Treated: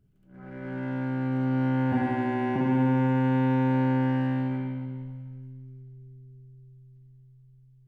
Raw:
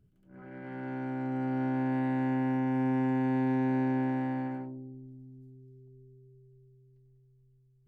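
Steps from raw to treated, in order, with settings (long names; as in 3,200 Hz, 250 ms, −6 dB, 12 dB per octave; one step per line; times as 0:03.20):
feedback echo with a high-pass in the loop 282 ms, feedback 52%, high-pass 1,100 Hz, level −18.5 dB
in parallel at −6.5 dB: slack as between gear wheels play −39.5 dBFS
0:01.92–0:02.56: on the sum: frequency shifter −14 Hz
on a send at −1 dB: high-shelf EQ 2,600 Hz +8.5 dB + convolution reverb RT60 1.6 s, pre-delay 47 ms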